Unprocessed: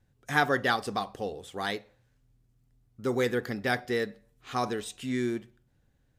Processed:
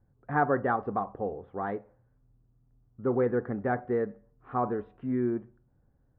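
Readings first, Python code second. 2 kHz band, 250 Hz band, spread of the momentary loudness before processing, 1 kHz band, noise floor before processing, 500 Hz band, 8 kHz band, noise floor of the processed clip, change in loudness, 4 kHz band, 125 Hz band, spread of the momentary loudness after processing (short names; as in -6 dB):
-7.0 dB, +1.5 dB, 11 LU, +1.0 dB, -69 dBFS, +1.5 dB, under -35 dB, -68 dBFS, 0.0 dB, under -30 dB, +1.5 dB, 9 LU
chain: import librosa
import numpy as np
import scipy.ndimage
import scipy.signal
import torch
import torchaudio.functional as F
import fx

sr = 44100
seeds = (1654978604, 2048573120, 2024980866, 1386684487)

y = scipy.signal.sosfilt(scipy.signal.butter(4, 1300.0, 'lowpass', fs=sr, output='sos'), x)
y = y * 10.0 ** (1.5 / 20.0)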